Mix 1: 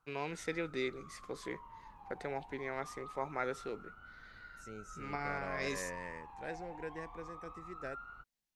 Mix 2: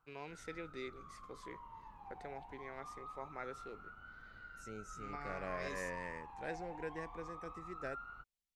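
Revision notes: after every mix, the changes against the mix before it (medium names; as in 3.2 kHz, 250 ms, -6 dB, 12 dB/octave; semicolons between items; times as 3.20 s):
first voice -9.0 dB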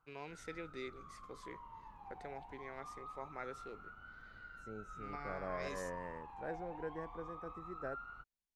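second voice: add resonant high shelf 1.8 kHz -12.5 dB, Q 1.5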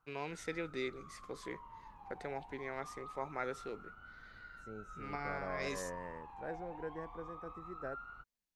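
first voice +6.5 dB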